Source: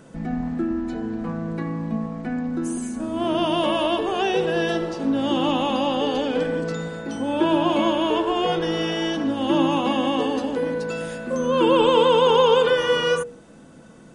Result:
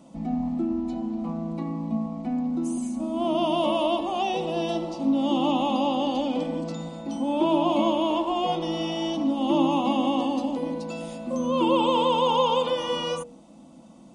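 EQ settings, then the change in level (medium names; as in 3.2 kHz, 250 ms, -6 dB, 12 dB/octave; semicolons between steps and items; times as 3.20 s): high-pass 45 Hz; treble shelf 6.1 kHz -7 dB; static phaser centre 430 Hz, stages 6; 0.0 dB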